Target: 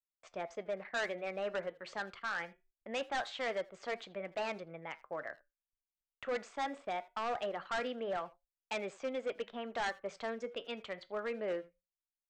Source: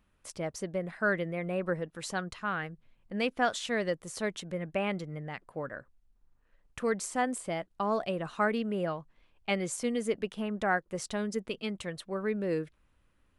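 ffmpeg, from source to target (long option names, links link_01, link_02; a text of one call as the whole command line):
ffmpeg -i in.wav -filter_complex "[0:a]anlmdn=0.01,agate=range=-25dB:threshold=-58dB:ratio=16:detection=peak,acrossover=split=370 3300:gain=0.178 1 0.0891[link_01][link_02][link_03];[link_01][link_02][link_03]amix=inputs=3:normalize=0,asplit=2[link_04][link_05];[link_05]asoftclip=type=tanh:threshold=-29.5dB,volume=-6dB[link_06];[link_04][link_06]amix=inputs=2:normalize=0,flanger=delay=6:depth=5.2:regen=-78:speed=0.21:shape=triangular,aresample=16000,asoftclip=type=hard:threshold=-31.5dB,aresample=44100,asetrate=48000,aresample=44100,asplit=2[link_07][link_08];[link_08]adelay=80,highpass=300,lowpass=3400,asoftclip=type=hard:threshold=-38dB,volume=-19dB[link_09];[link_07][link_09]amix=inputs=2:normalize=0" out.wav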